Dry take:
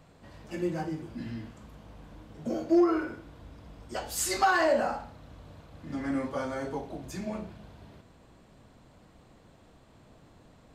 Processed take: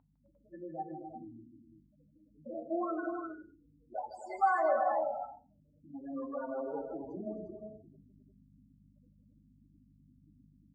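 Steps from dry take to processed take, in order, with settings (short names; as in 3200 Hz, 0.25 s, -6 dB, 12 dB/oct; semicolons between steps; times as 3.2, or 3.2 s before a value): in parallel at +0.5 dB: limiter -26.5 dBFS, peak gain reduction 11 dB; on the sum: hum 50 Hz, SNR 14 dB; loudest bins only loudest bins 8; band-pass sweep 880 Hz -> 400 Hz, 6.45–7.08; on a send: tapped delay 0.156/0.26/0.35/0.353 s -10.5/-10/-9.5/-12 dB; on the sum: FDN reverb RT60 0.31 s, low-frequency decay 1.25×, high-frequency decay 0.85×, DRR 11 dB; gain -1.5 dB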